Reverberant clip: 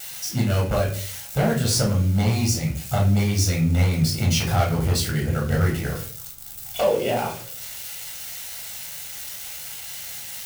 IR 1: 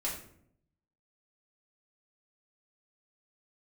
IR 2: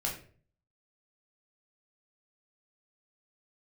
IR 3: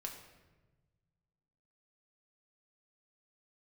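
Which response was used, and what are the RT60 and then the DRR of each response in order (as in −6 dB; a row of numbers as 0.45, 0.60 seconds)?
2; 0.65, 0.45, 1.2 seconds; −5.5, −2.0, 1.0 decibels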